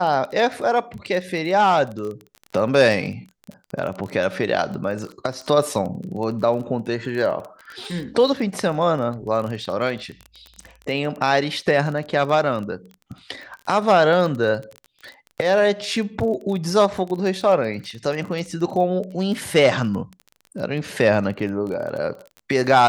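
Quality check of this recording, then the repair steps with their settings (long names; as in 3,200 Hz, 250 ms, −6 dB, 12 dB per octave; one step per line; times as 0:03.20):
surface crackle 25 per second −28 dBFS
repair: click removal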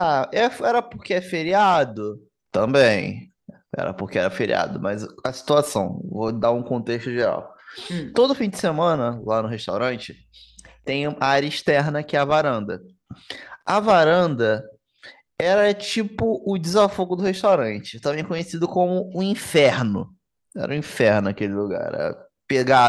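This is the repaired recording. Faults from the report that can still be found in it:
none of them is left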